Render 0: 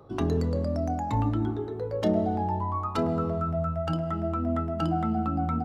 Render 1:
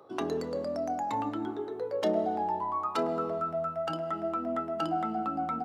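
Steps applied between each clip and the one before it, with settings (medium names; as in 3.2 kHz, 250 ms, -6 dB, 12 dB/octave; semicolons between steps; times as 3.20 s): high-pass 360 Hz 12 dB/octave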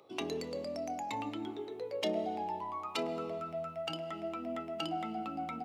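resonant high shelf 1.9 kHz +6.5 dB, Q 3; trim -5.5 dB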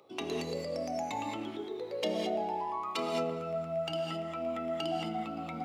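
gated-style reverb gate 240 ms rising, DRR 1 dB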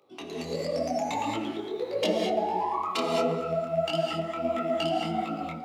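level rider gain up to 10 dB; detune thickener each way 52 cents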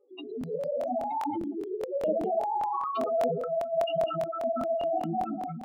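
spectral contrast enhancement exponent 3.9; crackling interface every 0.20 s, samples 1024, repeat, from 0.39 s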